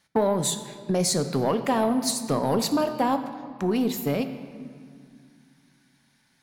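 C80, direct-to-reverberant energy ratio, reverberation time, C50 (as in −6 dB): 11.0 dB, 8.0 dB, 2.2 s, 10.0 dB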